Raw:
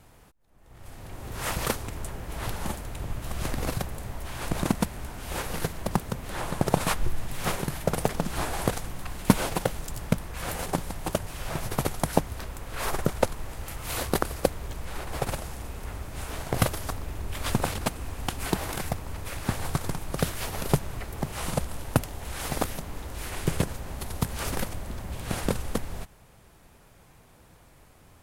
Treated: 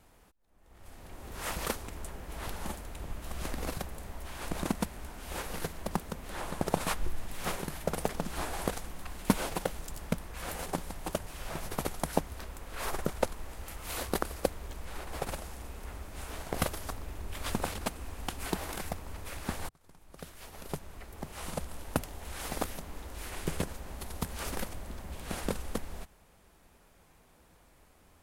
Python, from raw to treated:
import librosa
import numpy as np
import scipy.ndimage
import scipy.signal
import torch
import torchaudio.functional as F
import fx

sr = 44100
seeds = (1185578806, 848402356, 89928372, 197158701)

y = fx.edit(x, sr, fx.fade_in_span(start_s=19.69, length_s=2.32), tone=tone)
y = fx.peak_eq(y, sr, hz=120.0, db=-13.5, octaves=0.36)
y = y * librosa.db_to_amplitude(-5.5)